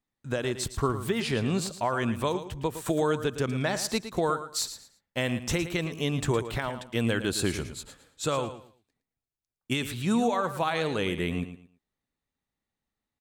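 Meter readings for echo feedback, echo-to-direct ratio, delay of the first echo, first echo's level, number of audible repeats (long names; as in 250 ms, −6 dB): 25%, −11.0 dB, 112 ms, −11.5 dB, 2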